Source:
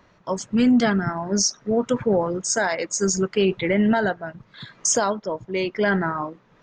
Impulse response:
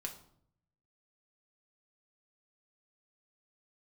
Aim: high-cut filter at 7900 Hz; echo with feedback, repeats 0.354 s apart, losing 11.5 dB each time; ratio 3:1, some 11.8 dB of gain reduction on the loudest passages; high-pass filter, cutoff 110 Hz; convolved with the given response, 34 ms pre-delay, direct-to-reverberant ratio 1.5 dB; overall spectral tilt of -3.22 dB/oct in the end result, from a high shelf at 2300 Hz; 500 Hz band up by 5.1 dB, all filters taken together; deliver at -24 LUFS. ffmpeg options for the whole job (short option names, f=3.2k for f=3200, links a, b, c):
-filter_complex "[0:a]highpass=110,lowpass=7.9k,equalizer=f=500:t=o:g=6,highshelf=f=2.3k:g=9,acompressor=threshold=-28dB:ratio=3,aecho=1:1:354|708|1062:0.266|0.0718|0.0194,asplit=2[a][b];[1:a]atrim=start_sample=2205,adelay=34[c];[b][c]afir=irnorm=-1:irlink=0,volume=0dB[d];[a][d]amix=inputs=2:normalize=0,volume=2dB"